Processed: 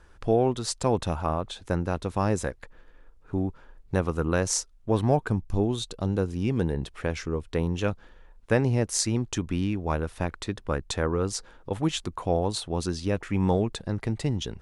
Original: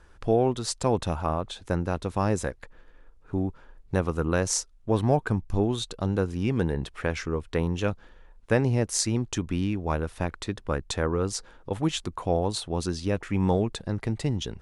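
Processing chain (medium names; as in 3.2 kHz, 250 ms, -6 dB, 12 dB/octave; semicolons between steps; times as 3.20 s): 5.27–7.75 s: dynamic bell 1.5 kHz, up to -4 dB, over -46 dBFS, Q 0.76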